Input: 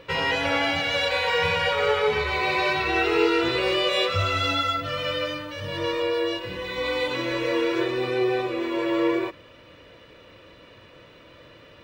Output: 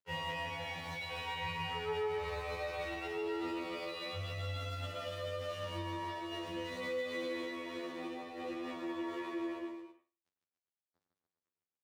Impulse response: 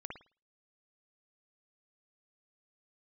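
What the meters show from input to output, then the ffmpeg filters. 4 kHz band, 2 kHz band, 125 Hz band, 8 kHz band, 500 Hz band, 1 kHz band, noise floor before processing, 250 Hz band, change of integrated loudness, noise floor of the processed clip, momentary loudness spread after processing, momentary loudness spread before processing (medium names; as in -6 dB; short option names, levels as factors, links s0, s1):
-17.5 dB, -17.0 dB, -10.0 dB, -13.5 dB, -15.5 dB, -14.5 dB, -50 dBFS, -14.0 dB, -16.0 dB, under -85 dBFS, 5 LU, 6 LU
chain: -filter_complex "[0:a]aeval=exprs='sgn(val(0))*max(abs(val(0))-0.0119,0)':c=same,highpass=76,aecho=1:1:150|285|406.5|515.8|614.3:0.631|0.398|0.251|0.158|0.1,asplit=2[s0][s1];[1:a]atrim=start_sample=2205,adelay=43[s2];[s1][s2]afir=irnorm=-1:irlink=0,volume=0.596[s3];[s0][s3]amix=inputs=2:normalize=0,acompressor=threshold=0.0631:ratio=6,tiltshelf=f=840:g=3,alimiter=limit=0.0708:level=0:latency=1:release=42,afftfilt=real='re*2*eq(mod(b,4),0)':imag='im*2*eq(mod(b,4),0)':win_size=2048:overlap=0.75,volume=0.473"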